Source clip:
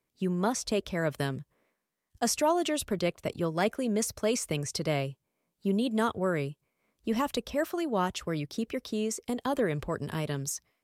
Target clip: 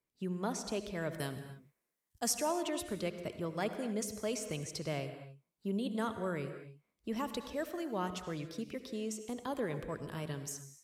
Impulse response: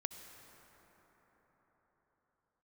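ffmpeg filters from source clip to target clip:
-filter_complex "[0:a]asettb=1/sr,asplit=3[s0][s1][s2];[s0]atrim=end=1.174[s3];[s1]atrim=start=1.17:end=2.33,asetpts=PTS-STARTPTS,afade=t=in:d=0.004:c=qsin,afade=t=out:st=1.156:d=0.004:c=qsin,highshelf=f=6100:g=10.5[s4];[s2]atrim=start=2.326[s5];[s3][s4]acrossfade=d=0.004:c1=hsin:c2=qsin[s6];[s6][s5]acrossfade=d=0.004:c1=qsin:c2=hsin[s7];[1:a]atrim=start_sample=2205,afade=t=out:st=0.34:d=0.01,atrim=end_sample=15435[s8];[s7][s8]afir=irnorm=-1:irlink=0,volume=0.501"

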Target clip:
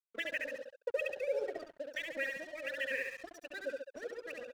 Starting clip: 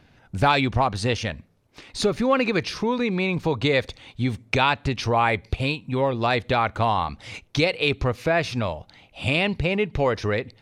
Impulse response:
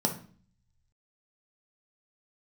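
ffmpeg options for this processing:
-filter_complex "[0:a]asetrate=103194,aresample=44100,afftfilt=real='re*gte(hypot(re,im),0.0891)':imag='im*gte(hypot(re,im),0.0891)':win_size=1024:overlap=0.75,acrossover=split=150|1100[s0][s1][s2];[s0]acrusher=samples=13:mix=1:aa=0.000001:lfo=1:lforange=13:lforate=1.1[s3];[s3][s1][s2]amix=inputs=3:normalize=0,aecho=1:1:69|138|207|276|345|414|483|552:0.668|0.381|0.217|0.124|0.0706|0.0402|0.0229|0.0131,acompressor=threshold=0.0631:ratio=1.5,asplit=3[s4][s5][s6];[s4]bandpass=f=530:t=q:w=8,volume=1[s7];[s5]bandpass=f=1840:t=q:w=8,volume=0.501[s8];[s6]bandpass=f=2480:t=q:w=8,volume=0.355[s9];[s7][s8][s9]amix=inputs=3:normalize=0,highshelf=f=6300:g=8.5,bandreject=f=50:t=h:w=6,bandreject=f=100:t=h:w=6,bandreject=f=150:t=h:w=6,bandreject=f=200:t=h:w=6,bandreject=f=250:t=h:w=6,bandreject=f=300:t=h:w=6,bandreject=f=350:t=h:w=6,bandreject=f=400:t=h:w=6,bandreject=f=450:t=h:w=6,afftfilt=real='re*gte(hypot(re,im),0.0158)':imag='im*gte(hypot(re,im),0.0158)':win_size=1024:overlap=0.75,acrossover=split=1800[s10][s11];[s10]aeval=exprs='val(0)*(1-0.5/2+0.5/2*cos(2*PI*1.3*n/s))':c=same[s12];[s11]aeval=exprs='val(0)*(1-0.5/2-0.5/2*cos(2*PI*1.3*n/s))':c=same[s13];[s12][s13]amix=inputs=2:normalize=0,aeval=exprs='sgn(val(0))*max(abs(val(0))-0.00266,0)':c=same"

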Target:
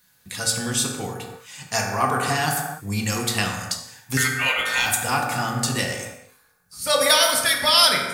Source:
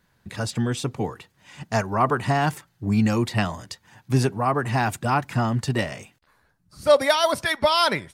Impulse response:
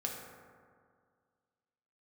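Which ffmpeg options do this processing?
-filter_complex "[0:a]asettb=1/sr,asplit=3[s0][s1][s2];[s0]atrim=end=4.174[s3];[s1]atrim=start=4.17:end=4.86,asetpts=PTS-STARTPTS,afade=t=in:d=0.004:c=qsin,afade=t=out:st=0.686:d=0.004:c=qsin,aeval=exprs='val(0)*sin(2*PI*1700*n/s)':c=same[s4];[s2]atrim=start=4.856[s5];[s3][s4]acrossfade=d=0.004:c1=hsin:c2=qsin[s6];[s6][s5]acrossfade=d=0.004:c1=qsin:c2=hsin,crystalizer=i=9:c=0[s7];[1:a]atrim=start_sample=2205,afade=t=out:st=0.37:d=0.01,atrim=end_sample=16758[s8];[s7][s8]afir=irnorm=-1:irlink=0,volume=0.501"

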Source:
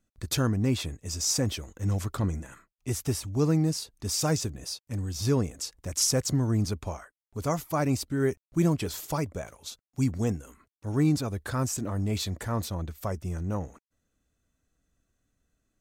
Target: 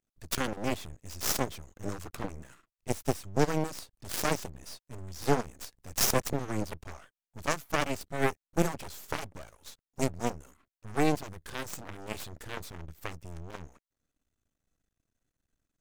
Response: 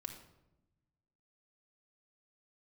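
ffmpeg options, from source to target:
-af "aeval=exprs='0.224*(cos(1*acos(clip(val(0)/0.224,-1,1)))-cos(1*PI/2))+0.01*(cos(6*acos(clip(val(0)/0.224,-1,1)))-cos(6*PI/2))+0.0501*(cos(7*acos(clip(val(0)/0.224,-1,1)))-cos(7*PI/2))':c=same,aeval=exprs='max(val(0),0)':c=same,volume=1.26"

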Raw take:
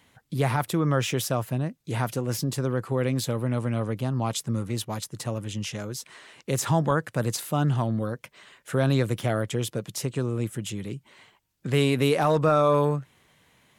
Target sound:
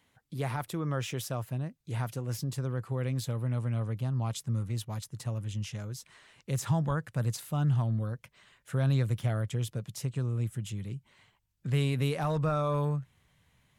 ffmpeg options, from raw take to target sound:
-af "asubboost=boost=4.5:cutoff=140,volume=0.355"

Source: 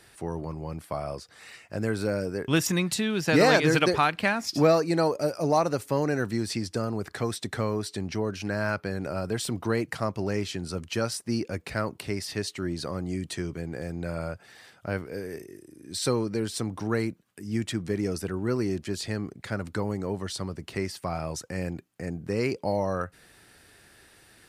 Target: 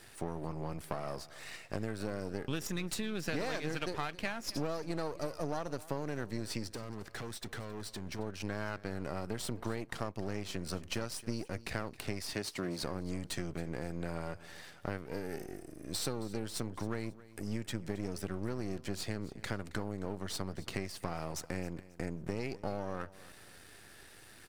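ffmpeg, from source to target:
-filter_complex "[0:a]aeval=exprs='if(lt(val(0),0),0.251*val(0),val(0))':c=same,asettb=1/sr,asplit=3[s0][s1][s2];[s0]atrim=end=12.334[s3];[s1]atrim=start=12.33:end=12.83,asetpts=PTS-STARTPTS,afade=t=in:d=0.004:c=qsin,afade=t=out:st=0.496:d=0.004:c=qsin,highpass=140[s4];[s2]atrim=start=12.826[s5];[s3][s4]acrossfade=d=0.004:c1=hsin:c2=qsin[s6];[s6][s5]acrossfade=d=0.004:c1=qsin:c2=hsin,acompressor=threshold=0.0158:ratio=6,asettb=1/sr,asplit=3[s7][s8][s9];[s7]atrim=end=6.694[s10];[s8]atrim=start=6.69:end=8.19,asetpts=PTS-STARTPTS,afade=t=in:d=0.004:c=qsin,afade=t=out:st=1.496:d=0.004:c=qsin,asoftclip=type=hard:threshold=0.0126[s11];[s9]atrim=start=8.186[s12];[s10][s11]acrossfade=d=0.004:c1=hsin:c2=qsin[s13];[s13][s12]acrossfade=d=0.004:c1=qsin:c2=hsin,aecho=1:1:270|540|810:0.119|0.0368|0.0114,volume=1.41"

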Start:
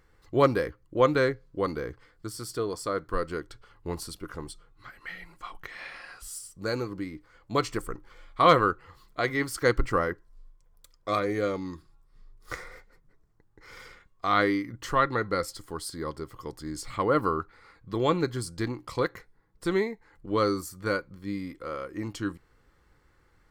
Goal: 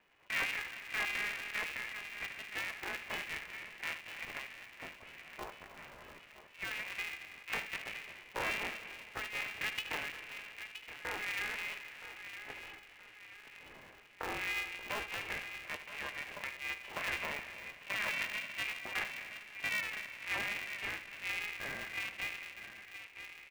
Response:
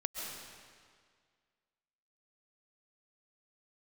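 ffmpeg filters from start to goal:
-filter_complex "[0:a]aemphasis=mode=production:type=bsi,acrossover=split=240[s0][s1];[s1]acompressor=threshold=0.0112:ratio=5[s2];[s0][s2]amix=inputs=2:normalize=0,asetrate=80880,aresample=44100,atempo=0.545254,asplit=2[s3][s4];[s4]adelay=970,lowpass=f=1300:p=1,volume=0.355,asplit=2[s5][s6];[s6]adelay=970,lowpass=f=1300:p=1,volume=0.55,asplit=2[s7][s8];[s8]adelay=970,lowpass=f=1300:p=1,volume=0.55,asplit=2[s9][s10];[s10]adelay=970,lowpass=f=1300:p=1,volume=0.55,asplit=2[s11][s12];[s12]adelay=970,lowpass=f=1300:p=1,volume=0.55,asplit=2[s13][s14];[s14]adelay=970,lowpass=f=1300:p=1,volume=0.55[s15];[s3][s5][s7][s9][s11][s13][s15]amix=inputs=7:normalize=0,asplit=2[s16][s17];[1:a]atrim=start_sample=2205,highshelf=f=3600:g=-12,adelay=77[s18];[s17][s18]afir=irnorm=-1:irlink=0,volume=0.355[s19];[s16][s19]amix=inputs=2:normalize=0,lowpass=f=2400:t=q:w=0.5098,lowpass=f=2400:t=q:w=0.6013,lowpass=f=2400:t=q:w=0.9,lowpass=f=2400:t=q:w=2.563,afreqshift=-2800,aeval=exprs='val(0)*sgn(sin(2*PI*210*n/s))':c=same"

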